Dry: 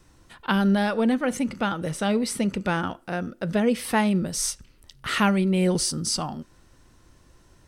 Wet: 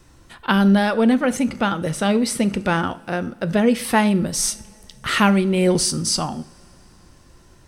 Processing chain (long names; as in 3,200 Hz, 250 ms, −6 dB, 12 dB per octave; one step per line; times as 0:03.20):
coupled-rooms reverb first 0.42 s, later 3.8 s, from −22 dB, DRR 13 dB
level +5 dB